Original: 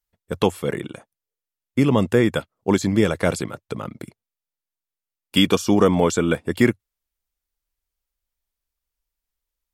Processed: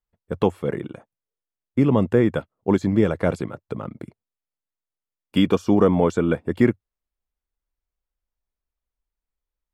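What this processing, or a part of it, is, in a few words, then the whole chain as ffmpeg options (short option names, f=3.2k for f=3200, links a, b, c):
through cloth: -af "highshelf=f=2.7k:g=-17"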